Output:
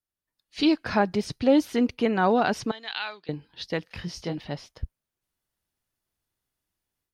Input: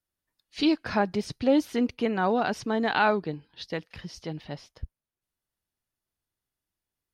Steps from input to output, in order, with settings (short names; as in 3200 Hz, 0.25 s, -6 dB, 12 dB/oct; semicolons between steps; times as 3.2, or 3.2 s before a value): AGC gain up to 10 dB; 2.71–3.29 band-pass 3600 Hz, Q 1.8; 3.84–4.38 doubler 23 ms -6 dB; gain -6 dB